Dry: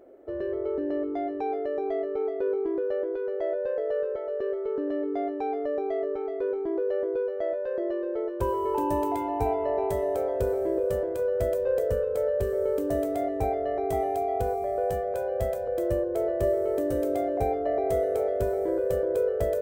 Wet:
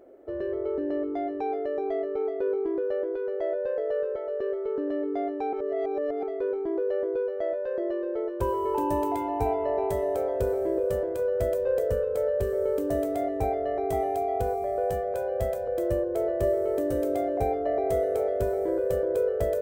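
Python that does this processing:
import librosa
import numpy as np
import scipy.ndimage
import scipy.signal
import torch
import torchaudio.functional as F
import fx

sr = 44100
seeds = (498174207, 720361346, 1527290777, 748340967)

y = fx.edit(x, sr, fx.reverse_span(start_s=5.53, length_s=0.7), tone=tone)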